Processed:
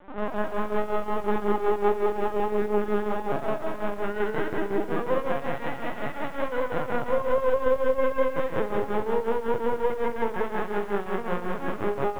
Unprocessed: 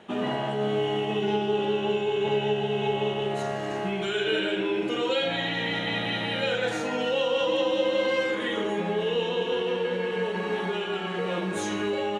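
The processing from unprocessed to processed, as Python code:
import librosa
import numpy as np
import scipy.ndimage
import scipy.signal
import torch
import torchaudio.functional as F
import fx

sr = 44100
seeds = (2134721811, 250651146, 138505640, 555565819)

y = scipy.signal.sosfilt(scipy.signal.butter(4, 1400.0, 'lowpass', fs=sr, output='sos'), x)
y = fx.low_shelf(y, sr, hz=260.0, db=-10.5)
y = np.maximum(y, 0.0)
y = fx.tremolo_shape(y, sr, shape='triangle', hz=5.5, depth_pct=85)
y = fx.doubler(y, sr, ms=27.0, db=-9.0)
y = fx.lpc_vocoder(y, sr, seeds[0], excitation='pitch_kept', order=16)
y = fx.echo_crushed(y, sr, ms=182, feedback_pct=55, bits=10, wet_db=-5.5)
y = F.gain(torch.from_numpy(y), 8.5).numpy()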